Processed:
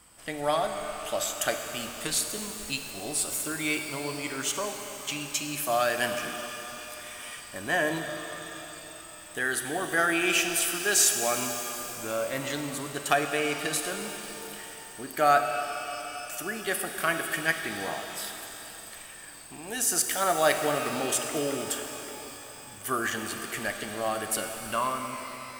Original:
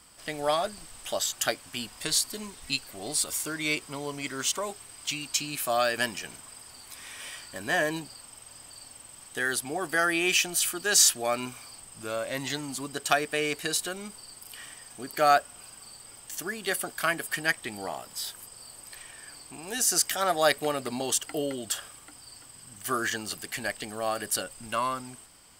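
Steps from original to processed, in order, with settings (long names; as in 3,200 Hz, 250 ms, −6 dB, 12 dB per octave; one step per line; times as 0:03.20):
parametric band 4,700 Hz −6.5 dB 0.86 octaves
reverb with rising layers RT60 3.7 s, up +12 semitones, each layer −8 dB, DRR 5 dB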